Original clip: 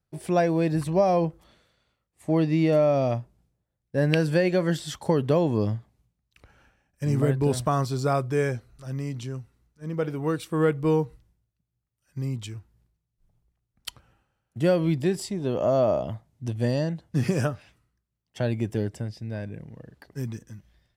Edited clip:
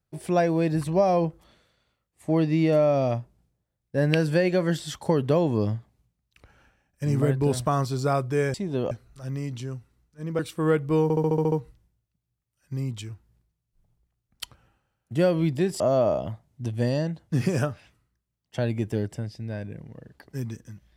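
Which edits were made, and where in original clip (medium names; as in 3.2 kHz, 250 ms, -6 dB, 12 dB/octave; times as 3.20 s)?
10.02–10.33 s: delete
10.97 s: stutter 0.07 s, 8 plays
15.25–15.62 s: move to 8.54 s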